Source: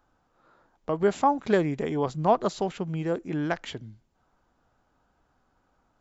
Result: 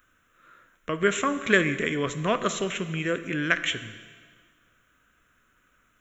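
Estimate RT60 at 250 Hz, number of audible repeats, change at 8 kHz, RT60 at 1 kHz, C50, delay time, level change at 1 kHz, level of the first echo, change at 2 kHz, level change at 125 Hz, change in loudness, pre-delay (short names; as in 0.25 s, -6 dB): 1.8 s, none, n/a, 1.7 s, 12.0 dB, none, -4.5 dB, none, +12.5 dB, -0.5 dB, +1.0 dB, 6 ms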